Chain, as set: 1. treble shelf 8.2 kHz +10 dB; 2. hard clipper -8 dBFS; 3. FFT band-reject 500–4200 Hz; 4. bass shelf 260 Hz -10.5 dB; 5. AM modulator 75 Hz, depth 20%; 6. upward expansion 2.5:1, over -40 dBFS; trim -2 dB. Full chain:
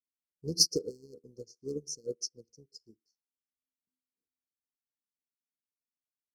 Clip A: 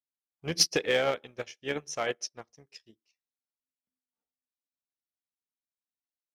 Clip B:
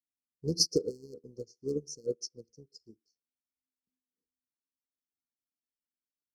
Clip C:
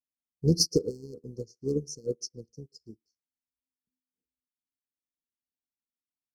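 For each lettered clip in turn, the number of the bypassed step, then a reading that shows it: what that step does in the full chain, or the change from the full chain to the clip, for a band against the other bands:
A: 3, 500 Hz band +6.0 dB; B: 1, 8 kHz band -7.0 dB; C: 4, 125 Hz band +11.5 dB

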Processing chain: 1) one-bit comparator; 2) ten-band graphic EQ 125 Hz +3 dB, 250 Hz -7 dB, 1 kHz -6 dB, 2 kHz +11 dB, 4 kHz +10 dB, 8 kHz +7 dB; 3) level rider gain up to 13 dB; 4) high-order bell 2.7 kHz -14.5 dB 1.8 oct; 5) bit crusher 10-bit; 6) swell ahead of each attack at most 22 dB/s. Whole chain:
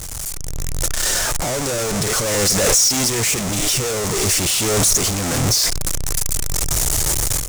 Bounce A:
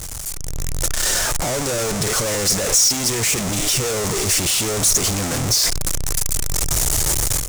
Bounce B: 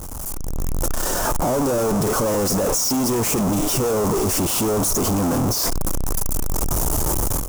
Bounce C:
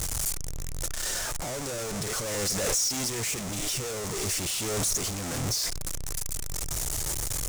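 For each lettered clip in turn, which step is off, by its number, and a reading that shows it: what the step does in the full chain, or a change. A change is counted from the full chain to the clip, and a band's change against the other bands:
6, crest factor change -3.5 dB; 2, crest factor change -4.5 dB; 3, loudness change -11.5 LU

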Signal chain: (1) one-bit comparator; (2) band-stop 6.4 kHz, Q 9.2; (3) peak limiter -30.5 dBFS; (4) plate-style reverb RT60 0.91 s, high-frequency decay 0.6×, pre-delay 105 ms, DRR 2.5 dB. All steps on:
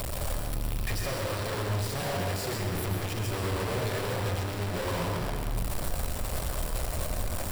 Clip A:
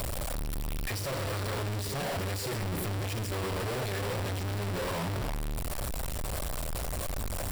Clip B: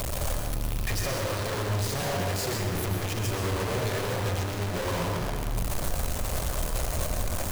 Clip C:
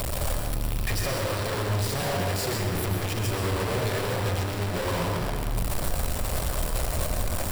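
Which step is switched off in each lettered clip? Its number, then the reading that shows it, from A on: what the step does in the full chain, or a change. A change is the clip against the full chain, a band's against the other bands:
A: 4, crest factor change -8.5 dB; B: 2, 8 kHz band +2.0 dB; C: 3, mean gain reduction 3.5 dB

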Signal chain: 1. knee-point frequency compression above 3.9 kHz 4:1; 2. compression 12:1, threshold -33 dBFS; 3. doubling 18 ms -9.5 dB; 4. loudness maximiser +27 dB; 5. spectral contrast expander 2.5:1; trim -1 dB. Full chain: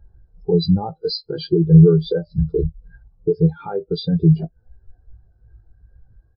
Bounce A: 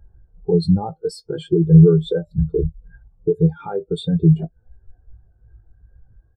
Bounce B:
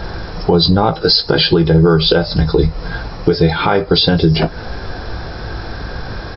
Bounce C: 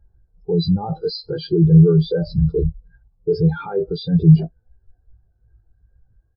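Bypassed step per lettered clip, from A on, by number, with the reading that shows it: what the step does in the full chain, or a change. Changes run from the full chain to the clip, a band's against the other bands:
1, 4 kHz band -6.5 dB; 5, 4 kHz band +13.0 dB; 2, mean gain reduction 10.0 dB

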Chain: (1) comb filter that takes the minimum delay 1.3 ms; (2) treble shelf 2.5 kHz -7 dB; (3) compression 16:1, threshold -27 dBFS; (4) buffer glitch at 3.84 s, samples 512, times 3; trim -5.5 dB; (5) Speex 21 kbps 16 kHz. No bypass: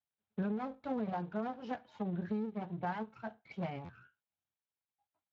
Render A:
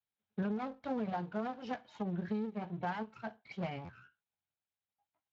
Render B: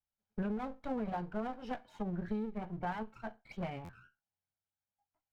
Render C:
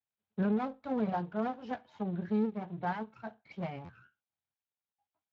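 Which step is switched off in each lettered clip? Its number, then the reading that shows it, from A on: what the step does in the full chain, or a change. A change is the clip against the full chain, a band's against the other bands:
2, 4 kHz band +4.0 dB; 5, 4 kHz band +1.5 dB; 3, mean gain reduction 2.0 dB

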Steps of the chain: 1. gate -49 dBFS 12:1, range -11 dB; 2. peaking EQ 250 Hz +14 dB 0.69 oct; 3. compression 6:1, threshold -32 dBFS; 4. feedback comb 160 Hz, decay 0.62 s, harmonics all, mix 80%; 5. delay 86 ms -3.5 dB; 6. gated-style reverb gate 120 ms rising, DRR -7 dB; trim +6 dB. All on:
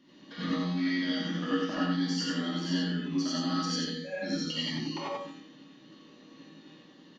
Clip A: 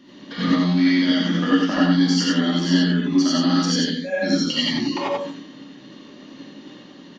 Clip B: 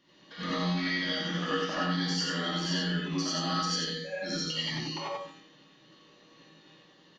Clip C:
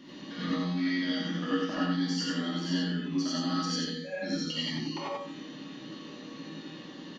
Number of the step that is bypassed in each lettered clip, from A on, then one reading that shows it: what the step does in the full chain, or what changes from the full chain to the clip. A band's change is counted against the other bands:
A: 4, 250 Hz band +2.0 dB; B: 2, 250 Hz band -7.0 dB; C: 1, momentary loudness spread change +6 LU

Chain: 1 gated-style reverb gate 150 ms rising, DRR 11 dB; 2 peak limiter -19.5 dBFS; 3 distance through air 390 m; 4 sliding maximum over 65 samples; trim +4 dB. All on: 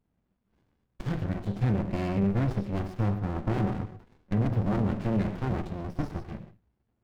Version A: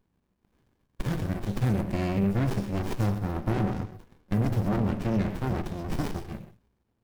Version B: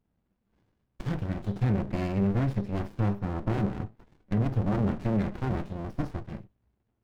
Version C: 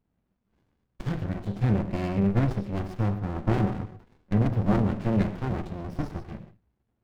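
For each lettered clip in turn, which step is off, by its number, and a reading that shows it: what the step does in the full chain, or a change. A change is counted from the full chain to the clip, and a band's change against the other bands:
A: 3, 4 kHz band +3.5 dB; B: 1, momentary loudness spread change +1 LU; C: 2, crest factor change +2.5 dB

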